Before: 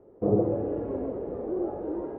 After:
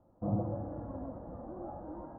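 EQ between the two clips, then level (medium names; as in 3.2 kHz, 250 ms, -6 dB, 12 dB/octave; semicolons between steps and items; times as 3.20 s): distance through air 320 m; static phaser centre 1 kHz, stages 4; -2.0 dB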